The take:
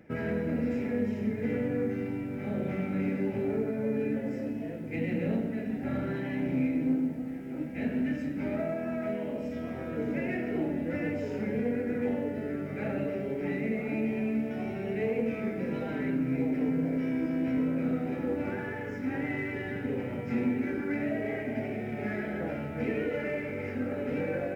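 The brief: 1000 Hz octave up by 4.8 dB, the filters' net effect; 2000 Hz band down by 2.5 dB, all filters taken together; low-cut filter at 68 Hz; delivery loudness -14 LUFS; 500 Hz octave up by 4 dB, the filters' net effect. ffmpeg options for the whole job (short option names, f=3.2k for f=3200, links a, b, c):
-af "highpass=68,equalizer=f=500:t=o:g=3.5,equalizer=f=1k:t=o:g=6.5,equalizer=f=2k:t=o:g=-5,volume=16dB"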